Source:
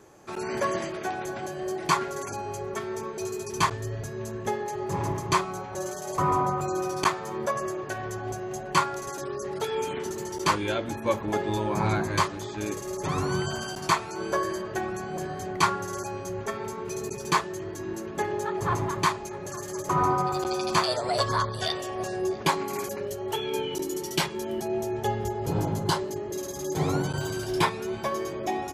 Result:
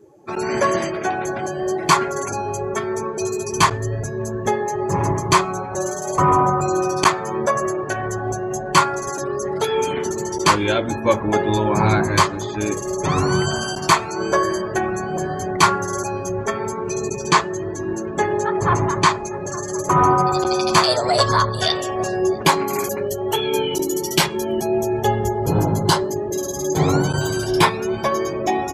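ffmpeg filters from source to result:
ffmpeg -i in.wav -filter_complex "[0:a]asettb=1/sr,asplit=3[link_01][link_02][link_03];[link_01]atrim=end=16.814[link_04];[link_02]atrim=start=16.81:end=19.73,asetpts=PTS-STARTPTS,afade=type=in:duration=0.004:curve=qsin,afade=type=out:start_time=2.916:duration=0.004:curve=qsin,acrossover=split=9500[link_05][link_06];[link_06]acompressor=threshold=-55dB:ratio=4:attack=1:release=60[link_07];[link_05][link_07]amix=inputs=2:normalize=0[link_08];[link_03]atrim=start=19.726[link_09];[link_04][link_08]acrossfade=duration=0.004:curve1=hsin:curve2=qsin[link_10];[link_10][link_09]acrossfade=duration=0.004:curve1=qsin:curve2=hsin,afftdn=noise_reduction=20:noise_floor=-46,highshelf=frequency=7300:gain=5,acontrast=81,volume=2dB" out.wav

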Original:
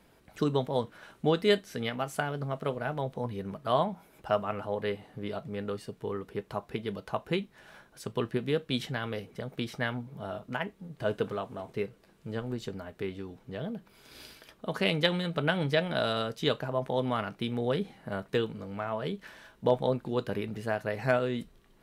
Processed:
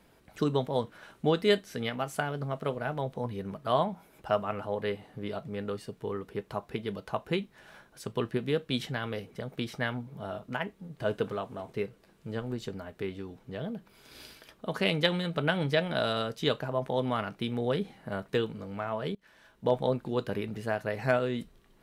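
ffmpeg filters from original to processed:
ffmpeg -i in.wav -filter_complex "[0:a]asplit=2[link_01][link_02];[link_01]atrim=end=19.15,asetpts=PTS-STARTPTS,afade=type=out:start_time=19.146:duration=0.004:curve=hsin:silence=0.0749894[link_03];[link_02]atrim=start=19.15,asetpts=PTS-STARTPTS,afade=type=in:duration=0.65:silence=0.0749894[link_04];[link_03][link_04]concat=n=2:v=0:a=1" out.wav

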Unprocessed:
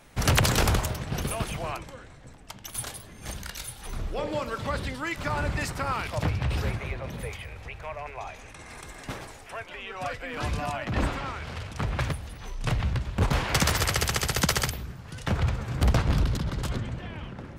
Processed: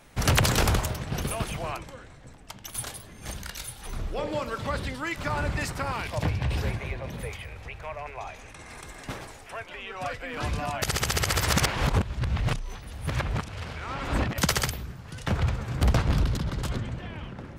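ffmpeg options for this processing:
ffmpeg -i in.wav -filter_complex "[0:a]asettb=1/sr,asplit=3[link_01][link_02][link_03];[link_01]atrim=end=5.824[link_04];[link_02]atrim=start=5.82:end=7.12,asetpts=PTS-STARTPTS,afade=type=in:duration=0.004:curve=qsin,afade=type=out:start_time=1.296:duration=0.004:curve=qsin,bandreject=frequency=1300:width=8.2[link_05];[link_03]atrim=start=7.116[link_06];[link_04][link_05]acrossfade=duration=0.004:curve1=hsin:curve2=qsin[link_07];[link_07][link_06]acrossfade=duration=0.004:curve1=qsin:curve2=hsin,asplit=3[link_08][link_09][link_10];[link_08]atrim=end=10.822[link_11];[link_09]atrim=start=10.818:end=14.382,asetpts=PTS-STARTPTS,areverse[link_12];[link_10]atrim=start=14.378[link_13];[link_11][link_12]acrossfade=duration=0.004:curve1=hsin:curve2=hsin[link_14];[link_14][link_13]acrossfade=duration=0.004:curve1=hsin:curve2=hsin" out.wav

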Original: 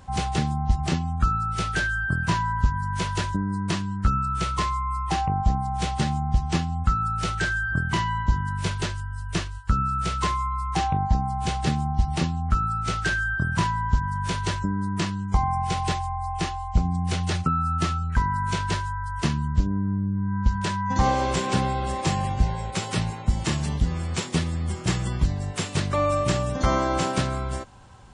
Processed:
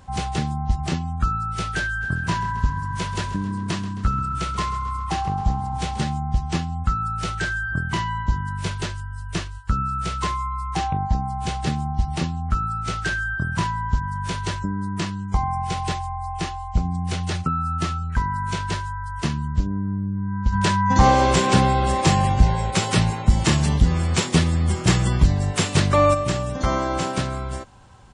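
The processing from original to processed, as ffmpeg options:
ffmpeg -i in.wav -filter_complex "[0:a]asplit=3[link_01][link_02][link_03];[link_01]afade=type=out:start_time=2:duration=0.02[link_04];[link_02]asplit=6[link_05][link_06][link_07][link_08][link_09][link_10];[link_06]adelay=133,afreqshift=32,volume=-15dB[link_11];[link_07]adelay=266,afreqshift=64,volume=-20dB[link_12];[link_08]adelay=399,afreqshift=96,volume=-25.1dB[link_13];[link_09]adelay=532,afreqshift=128,volume=-30.1dB[link_14];[link_10]adelay=665,afreqshift=160,volume=-35.1dB[link_15];[link_05][link_11][link_12][link_13][link_14][link_15]amix=inputs=6:normalize=0,afade=type=in:start_time=2:duration=0.02,afade=type=out:start_time=6:duration=0.02[link_16];[link_03]afade=type=in:start_time=6:duration=0.02[link_17];[link_04][link_16][link_17]amix=inputs=3:normalize=0,asplit=3[link_18][link_19][link_20];[link_18]afade=type=out:start_time=20.52:duration=0.02[link_21];[link_19]acontrast=84,afade=type=in:start_time=20.52:duration=0.02,afade=type=out:start_time=26.13:duration=0.02[link_22];[link_20]afade=type=in:start_time=26.13:duration=0.02[link_23];[link_21][link_22][link_23]amix=inputs=3:normalize=0" out.wav

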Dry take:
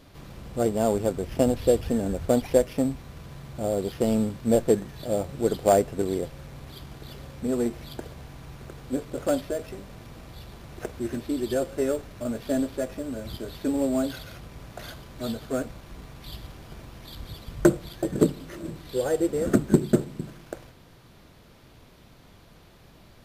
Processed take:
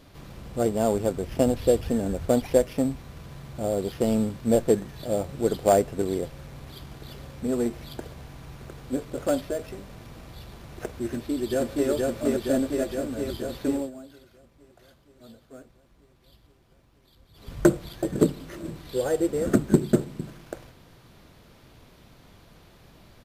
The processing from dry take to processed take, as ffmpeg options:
ffmpeg -i in.wav -filter_complex "[0:a]asplit=2[link_01][link_02];[link_02]afade=type=in:start_time=11.06:duration=0.01,afade=type=out:start_time=11.89:duration=0.01,aecho=0:1:470|940|1410|1880|2350|2820|3290|3760|4230|4700|5170|5640:0.891251|0.668438|0.501329|0.375996|0.281997|0.211498|0.158624|0.118968|0.0892257|0.0669193|0.0501895|0.0376421[link_03];[link_01][link_03]amix=inputs=2:normalize=0,asplit=3[link_04][link_05][link_06];[link_04]atrim=end=13.91,asetpts=PTS-STARTPTS,afade=type=out:start_time=13.72:duration=0.19:silence=0.125893[link_07];[link_05]atrim=start=13.91:end=17.33,asetpts=PTS-STARTPTS,volume=-18dB[link_08];[link_06]atrim=start=17.33,asetpts=PTS-STARTPTS,afade=type=in:duration=0.19:silence=0.125893[link_09];[link_07][link_08][link_09]concat=n=3:v=0:a=1" out.wav

